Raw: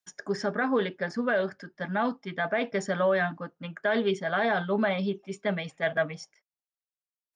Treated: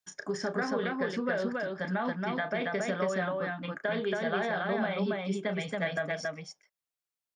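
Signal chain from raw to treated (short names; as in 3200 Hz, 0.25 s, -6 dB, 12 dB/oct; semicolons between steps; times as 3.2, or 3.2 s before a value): compressor, threshold -29 dBFS, peak gain reduction 8.5 dB; on a send: loudspeakers at several distances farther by 11 m -9 dB, 95 m -2 dB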